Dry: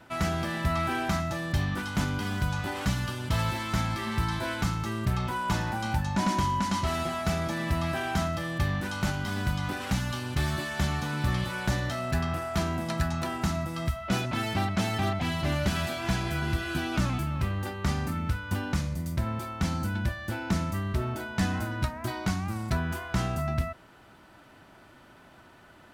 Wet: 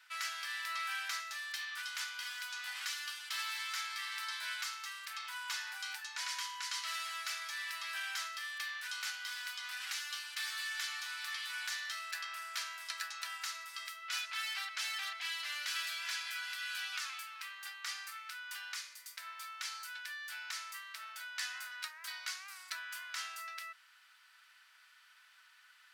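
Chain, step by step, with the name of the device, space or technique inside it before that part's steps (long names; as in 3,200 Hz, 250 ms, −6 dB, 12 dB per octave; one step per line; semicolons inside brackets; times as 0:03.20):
headphones lying on a table (high-pass filter 1,500 Hz 24 dB per octave; parametric band 4,800 Hz +4 dB 0.51 octaves)
level −3 dB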